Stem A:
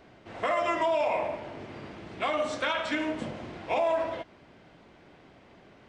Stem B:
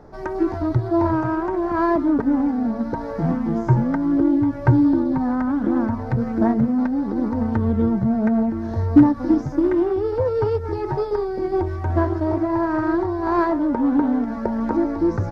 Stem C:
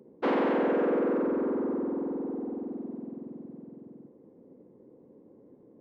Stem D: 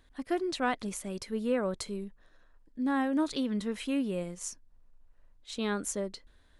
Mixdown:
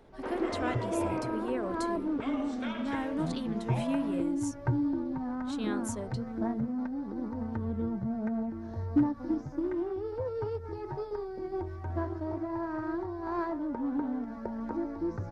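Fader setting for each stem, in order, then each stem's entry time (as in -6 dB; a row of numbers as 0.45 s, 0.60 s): -12.5 dB, -13.5 dB, -12.5 dB, -5.5 dB; 0.00 s, 0.00 s, 0.00 s, 0.00 s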